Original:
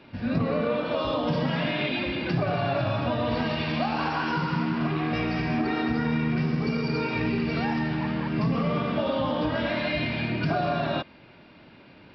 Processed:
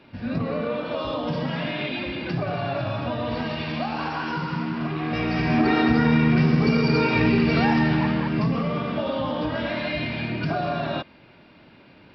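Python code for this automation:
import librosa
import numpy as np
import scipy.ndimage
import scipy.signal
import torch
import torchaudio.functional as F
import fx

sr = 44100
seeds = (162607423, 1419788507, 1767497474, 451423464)

y = fx.gain(x, sr, db=fx.line((4.96, -1.0), (5.67, 7.0), (7.94, 7.0), (8.69, 0.0)))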